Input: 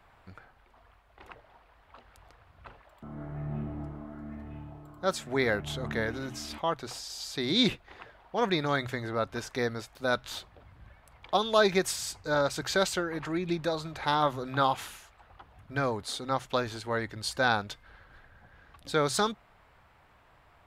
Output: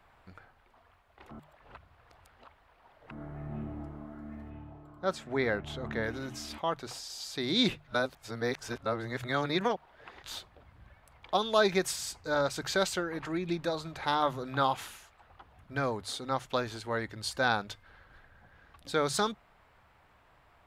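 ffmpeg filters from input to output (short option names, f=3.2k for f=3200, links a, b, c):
-filter_complex "[0:a]asettb=1/sr,asplit=3[a][b][c];[a]atrim=end=4.504[d];[b]atrim=start=4.5:end=6.04,asetpts=PTS-STARTPTS,afade=t=in:d=0.004:c=qsin,afade=t=out:st=1.536:d=0.004:c=qsin,lowpass=f=3.1k:p=1[e];[c]atrim=start=6.036[f];[d][e]acrossfade=d=0.004:c1=hsin:c2=qsin[g];[g][f]acrossfade=d=0.004:c1=qsin:c2=hsin,asplit=5[h][i][j][k][l];[h]atrim=end=1.312[m];[i]atrim=start=1.308:end=3.112,asetpts=PTS-STARTPTS,areverse[n];[j]atrim=start=3.108:end=7.872[o];[k]atrim=start=7.868:end=10.232,asetpts=PTS-STARTPTS,areverse[p];[l]atrim=start=10.228[q];[m][n]acrossfade=d=0.004:c1=hsin:c2=hsin[r];[r][o]acrossfade=d=0.004:c1=hsin:c2=hsin[s];[s][p]acrossfade=d=0.004:c1=hsin:c2=hsin[t];[t][q]acrossfade=d=0.004:c1=hsin:c2=hsin,bandreject=f=50:t=h:w=6,bandreject=f=100:t=h:w=6,bandreject=f=150:t=h:w=6,volume=-2dB"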